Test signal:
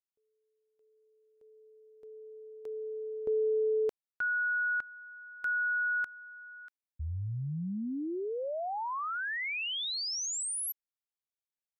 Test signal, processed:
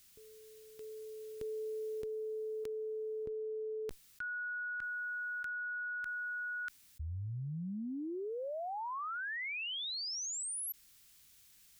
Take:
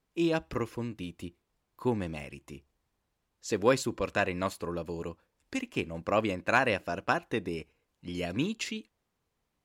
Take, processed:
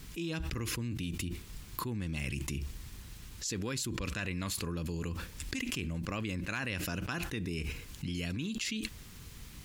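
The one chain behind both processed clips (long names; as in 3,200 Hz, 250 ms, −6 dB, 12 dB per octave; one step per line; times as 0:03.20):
guitar amp tone stack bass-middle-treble 6-0-2
envelope flattener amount 100%
level +7.5 dB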